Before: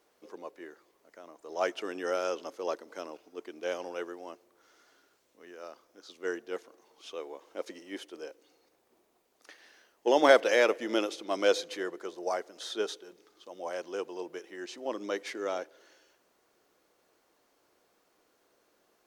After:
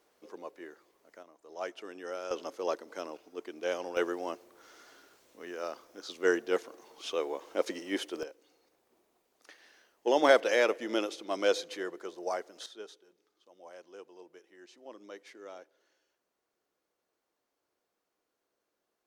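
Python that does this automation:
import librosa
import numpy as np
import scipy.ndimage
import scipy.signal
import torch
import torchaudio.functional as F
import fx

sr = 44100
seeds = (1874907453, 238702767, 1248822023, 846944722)

y = fx.gain(x, sr, db=fx.steps((0.0, -0.5), (1.23, -8.0), (2.31, 1.0), (3.97, 7.5), (8.23, -2.0), (12.66, -13.5)))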